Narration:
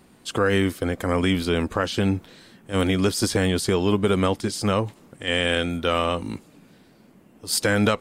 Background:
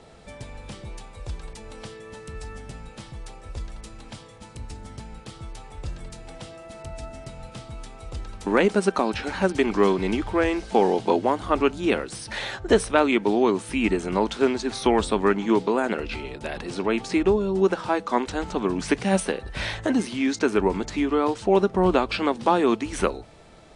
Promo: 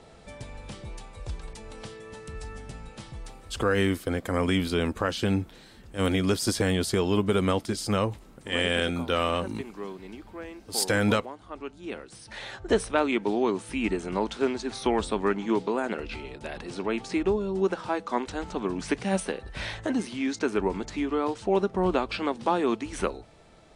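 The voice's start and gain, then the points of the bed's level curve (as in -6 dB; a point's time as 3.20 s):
3.25 s, -3.5 dB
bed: 3.25 s -2 dB
3.99 s -18 dB
11.56 s -18 dB
12.72 s -5 dB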